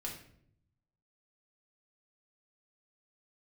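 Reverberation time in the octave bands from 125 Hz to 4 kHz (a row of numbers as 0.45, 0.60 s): 1.3, 1.0, 0.75, 0.55, 0.55, 0.45 s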